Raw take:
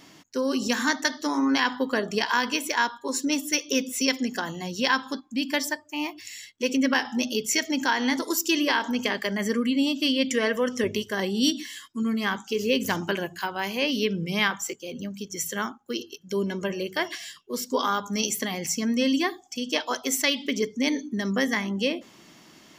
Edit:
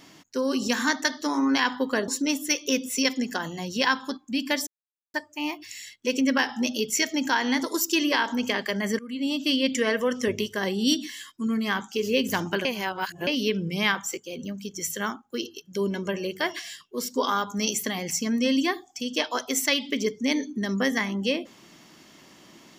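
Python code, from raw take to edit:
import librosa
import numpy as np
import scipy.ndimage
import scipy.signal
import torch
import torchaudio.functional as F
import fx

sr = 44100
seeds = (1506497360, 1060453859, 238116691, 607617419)

y = fx.edit(x, sr, fx.cut(start_s=2.08, length_s=1.03),
    fx.insert_silence(at_s=5.7, length_s=0.47),
    fx.fade_in_from(start_s=9.55, length_s=0.44, floor_db=-23.5),
    fx.reverse_span(start_s=13.21, length_s=0.62), tone=tone)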